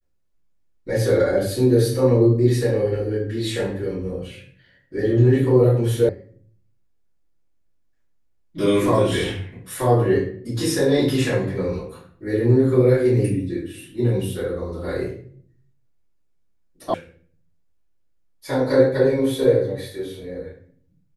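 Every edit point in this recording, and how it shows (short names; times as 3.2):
6.09 sound cut off
16.94 sound cut off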